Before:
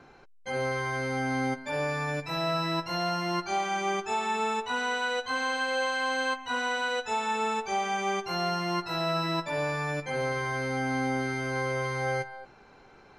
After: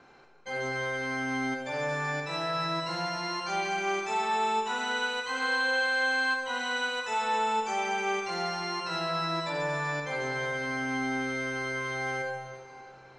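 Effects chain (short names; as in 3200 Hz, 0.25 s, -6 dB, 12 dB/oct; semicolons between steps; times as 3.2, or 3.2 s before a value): elliptic low-pass 8600 Hz; low shelf 230 Hz -8 dB; in parallel at -8 dB: soft clip -33 dBFS, distortion -10 dB; on the sum: reverb RT60 2.3 s, pre-delay 28 ms, DRR 1.5 dB; gain -3.5 dB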